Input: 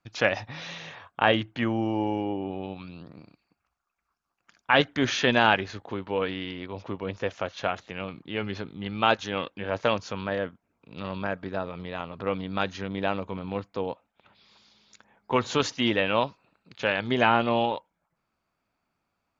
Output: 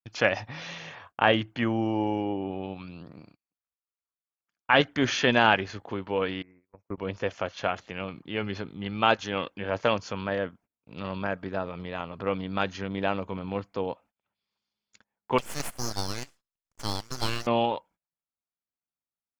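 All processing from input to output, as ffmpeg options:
ffmpeg -i in.wav -filter_complex "[0:a]asettb=1/sr,asplit=3[link_01][link_02][link_03];[link_01]atrim=end=6.424[link_04];[link_02]atrim=start=6.42:end=6.98,asetpts=PTS-STARTPTS,afade=type=in:duration=0.004:curve=qsin,afade=type=out:start_time=0.556:duration=0.004:curve=qsin,agate=range=-21dB:threshold=-33dB:ratio=16:release=100:detection=peak,asuperstop=centerf=3700:order=20:qfactor=1.3,highshelf=frequency=2200:gain=-6.5[link_05];[link_03]atrim=start=6.976[link_06];[link_04][link_05]acrossfade=duration=0.004:curve1=hsin:curve2=qsin[link_07];[link_07][link_06]acrossfade=duration=0.004:curve1=qsin:curve2=hsin,asettb=1/sr,asplit=3[link_08][link_09][link_10];[link_08]atrim=end=15.384[link_11];[link_09]atrim=start=15.38:end=17.47,asetpts=PTS-STARTPTS,afade=type=in:duration=0.004:curve=qsin,afade=type=out:start_time=2.086:duration=0.004:curve=qsin,highpass=frequency=1400:width=0.5412,highpass=frequency=1400:width=1.3066,aeval=exprs='abs(val(0))':channel_layout=same[link_12];[link_10]atrim=start=17.466[link_13];[link_11][link_12]acrossfade=duration=0.004:curve1=hsin:curve2=qsin[link_14];[link_14][link_13]acrossfade=duration=0.004:curve1=qsin:curve2=hsin,agate=range=-26dB:threshold=-53dB:ratio=16:detection=peak,bandreject=frequency=3800:width=12" out.wav

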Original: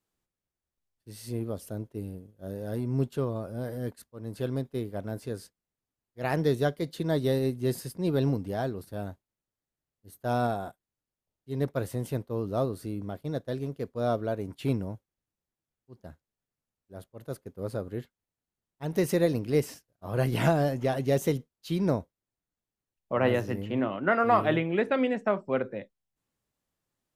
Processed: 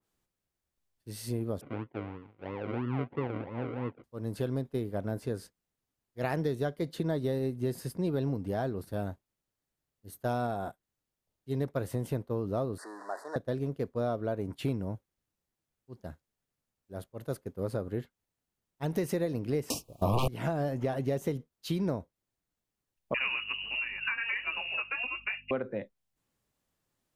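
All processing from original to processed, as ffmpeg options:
ffmpeg -i in.wav -filter_complex "[0:a]asettb=1/sr,asplit=3[link_01][link_02][link_03];[link_01]atrim=end=1.614[link_04];[link_02]atrim=start=1.61:end=4.04,asetpts=PTS-STARTPTS,afade=type=in:duration=0.004:curve=qsin,afade=type=out:start_time=2.426:duration=0.004:curve=qsin,acrusher=samples=40:mix=1:aa=0.000001:lfo=1:lforange=24:lforate=3,highpass=140,equalizer=frequency=190:width_type=q:width=4:gain=-9,equalizer=frequency=390:width_type=q:width=4:gain=-3,equalizer=frequency=630:width_type=q:width=4:gain=-6,equalizer=frequency=1200:width_type=q:width=4:gain=-5,equalizer=frequency=1700:width_type=q:width=4:gain=-9,lowpass=frequency=2300:width=0.5412,lowpass=frequency=2300:width=1.3066[link_05];[link_03]atrim=start=4.036[link_06];[link_04][link_05]acrossfade=duration=0.004:curve1=hsin:curve2=qsin[link_07];[link_07][link_06]acrossfade=duration=0.004:curve1=qsin:curve2=hsin,asettb=1/sr,asplit=3[link_08][link_09][link_10];[link_08]atrim=end=12.784[link_11];[link_09]atrim=start=12.78:end=13.36,asetpts=PTS-STARTPTS,afade=type=in:duration=0.004:curve=qsin,afade=type=out:start_time=0.576:duration=0.004:curve=qsin,aeval=exprs='val(0)+0.5*0.00891*sgn(val(0))':channel_layout=same,asuperstop=centerf=2700:order=12:qfactor=1.3,highpass=frequency=480:width=0.5412,highpass=frequency=480:width=1.3066,equalizer=frequency=490:width_type=q:width=4:gain=-6,equalizer=frequency=1000:width_type=q:width=4:gain=7,equalizer=frequency=1800:width_type=q:width=4:gain=8,equalizer=frequency=2600:width_type=q:width=4:gain=4,equalizer=frequency=3900:width_type=q:width=4:gain=-8,equalizer=frequency=6100:width_type=q:width=4:gain=-4,lowpass=frequency=9400:width=0.5412,lowpass=frequency=9400:width=1.3066[link_12];[link_10]atrim=start=13.356[link_13];[link_11][link_12]acrossfade=duration=0.004:curve1=hsin:curve2=qsin[link_14];[link_14][link_13]acrossfade=duration=0.004:curve1=qsin:curve2=hsin,asettb=1/sr,asplit=3[link_15][link_16][link_17];[link_15]atrim=end=19.704[link_18];[link_16]atrim=start=19.7:end=20.28,asetpts=PTS-STARTPTS,afade=type=in:duration=0.004:curve=qsin,afade=type=out:start_time=0.576:duration=0.004:curve=qsin,acontrast=83,aeval=exprs='0.447*sin(PI/2*5.01*val(0)/0.447)':channel_layout=same,asuperstop=centerf=1700:order=12:qfactor=1.4[link_19];[link_17]atrim=start=20.276[link_20];[link_18][link_19]acrossfade=duration=0.004:curve1=hsin:curve2=qsin[link_21];[link_21][link_20]acrossfade=duration=0.004:curve1=qsin:curve2=hsin,asettb=1/sr,asplit=3[link_22][link_23][link_24];[link_22]atrim=end=23.144[link_25];[link_23]atrim=start=23.14:end=25.51,asetpts=PTS-STARTPTS,afade=type=in:duration=0.004:curve=qsin,afade=type=out:start_time=2.366:duration=0.004:curve=qsin,lowpass=frequency=2600:width_type=q:width=0.5098,lowpass=frequency=2600:width_type=q:width=0.6013,lowpass=frequency=2600:width_type=q:width=0.9,lowpass=frequency=2600:width_type=q:width=2.563,afreqshift=-3000,aeval=exprs='val(0)+0.00141*(sin(2*PI*50*n/s)+sin(2*PI*2*50*n/s)/2+sin(2*PI*3*50*n/s)/3+sin(2*PI*4*50*n/s)/4+sin(2*PI*5*50*n/s)/5)':channel_layout=same,flanger=delay=2.9:depth=5.3:regen=25:speed=1.5:shape=sinusoidal[link_26];[link_24]atrim=start=25.506[link_27];[link_25][link_26]acrossfade=duration=0.004:curve1=hsin:curve2=qsin[link_28];[link_28][link_27]acrossfade=duration=0.004:curve1=qsin:curve2=hsin,acompressor=threshold=-31dB:ratio=5,adynamicequalizer=threshold=0.00158:dfrequency=2300:dqfactor=0.7:tfrequency=2300:tqfactor=0.7:attack=5:release=100:ratio=0.375:range=3:mode=cutabove:tftype=highshelf,volume=3dB" out.wav

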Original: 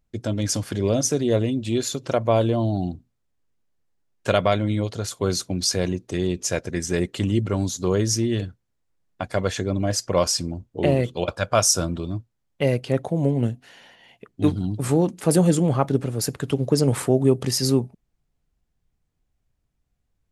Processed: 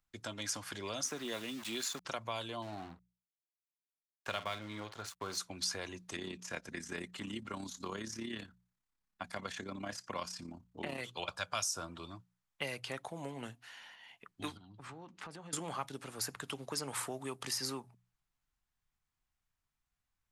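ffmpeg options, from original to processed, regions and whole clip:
ffmpeg -i in.wav -filter_complex "[0:a]asettb=1/sr,asplit=3[link_01][link_02][link_03];[link_01]atrim=end=1.044[link_04];[link_02]atrim=start=1.04:end=2.05,asetpts=PTS-STARTPTS,afade=type=in:duration=0.004:curve=qsin,afade=type=out:start_time=1.006:duration=0.004:curve=qsin,lowshelf=frequency=120:width_type=q:width=1.5:gain=-13.5,aeval=exprs='val(0)*gte(abs(val(0)),0.0158)':channel_layout=same[link_05];[link_03]atrim=start=2.046[link_06];[link_04][link_05]acrossfade=duration=0.004:curve1=hsin:curve2=qsin[link_07];[link_07][link_06]acrossfade=duration=0.004:curve1=qsin:curve2=hsin,asettb=1/sr,asplit=3[link_08][link_09][link_10];[link_08]atrim=end=2.624[link_11];[link_09]atrim=start=2.62:end=5.38,asetpts=PTS-STARTPTS,afade=type=in:duration=0.004:curve=qsin,afade=type=out:start_time=2.756:duration=0.004:curve=qsin,highshelf=frequency=2800:gain=-9,asplit=2[link_12][link_13];[link_13]adelay=47,volume=-13dB[link_14];[link_12][link_14]amix=inputs=2:normalize=0,atrim=end_sample=121716,aeval=exprs='sgn(val(0))*max(abs(val(0))-0.00794,0)':channel_layout=same[link_15];[link_10]atrim=start=5.376[link_16];[link_11][link_15]acrossfade=duration=0.004:curve1=hsin:curve2=qsin[link_17];[link_17][link_16]acrossfade=duration=0.004:curve1=qsin:curve2=hsin,asettb=1/sr,asplit=3[link_18][link_19][link_20];[link_18]atrim=end=6.164[link_21];[link_19]atrim=start=6.16:end=10.98,asetpts=PTS-STARTPTS,afade=type=in:duration=0.004:curve=qsin,afade=type=out:start_time=4.816:duration=0.004:curve=qsin,acrossover=split=2600[link_22][link_23];[link_23]acompressor=threshold=-39dB:ratio=4:attack=1:release=60[link_24];[link_22][link_24]amix=inputs=2:normalize=0,tremolo=f=34:d=0.621,equalizer=frequency=220:width_type=o:width=0.86:gain=10[link_25];[link_20]atrim=start=10.976[link_26];[link_21][link_25]acrossfade=duration=0.004:curve1=hsin:curve2=qsin[link_27];[link_27][link_26]acrossfade=duration=0.004:curve1=qsin:curve2=hsin,asettb=1/sr,asplit=3[link_28][link_29][link_30];[link_28]atrim=end=14.574[link_31];[link_29]atrim=start=14.57:end=15.53,asetpts=PTS-STARTPTS,afade=type=in:duration=0.004:curve=qsin,afade=type=out:start_time=0.956:duration=0.004:curve=qsin,lowpass=3800,acompressor=threshold=-36dB:ratio=3:attack=3.2:release=140:knee=1:detection=peak[link_32];[link_30]atrim=start=15.526[link_33];[link_31][link_32]acrossfade=duration=0.004:curve1=hsin:curve2=qsin[link_34];[link_34][link_33]acrossfade=duration=0.004:curve1=qsin:curve2=hsin,lowshelf=frequency=730:width_type=q:width=1.5:gain=-10.5,bandreject=frequency=60:width_type=h:width=6,bandreject=frequency=120:width_type=h:width=6,bandreject=frequency=180:width_type=h:width=6,acrossover=split=270|890|2400[link_35][link_36][link_37][link_38];[link_35]acompressor=threshold=-48dB:ratio=4[link_39];[link_36]acompressor=threshold=-37dB:ratio=4[link_40];[link_37]acompressor=threshold=-42dB:ratio=4[link_41];[link_38]acompressor=threshold=-32dB:ratio=4[link_42];[link_39][link_40][link_41][link_42]amix=inputs=4:normalize=0,volume=-4.5dB" out.wav

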